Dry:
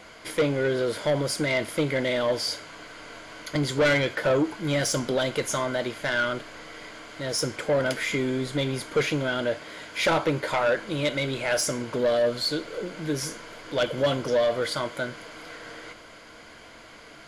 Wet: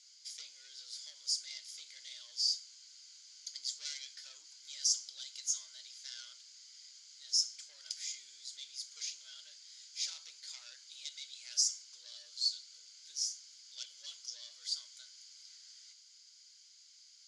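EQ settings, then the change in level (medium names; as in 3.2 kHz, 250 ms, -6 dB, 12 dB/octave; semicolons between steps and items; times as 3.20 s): Butterworth band-pass 5.8 kHz, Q 2.2; 0.0 dB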